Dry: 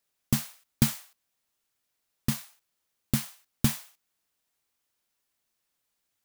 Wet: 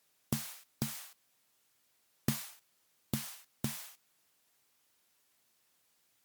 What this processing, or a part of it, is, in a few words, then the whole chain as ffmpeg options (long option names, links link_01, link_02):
podcast mastering chain: -af "highpass=91,acompressor=threshold=-32dB:ratio=4,alimiter=limit=-22dB:level=0:latency=1:release=201,volume=7dB" -ar 44100 -c:a libmp3lame -b:a 96k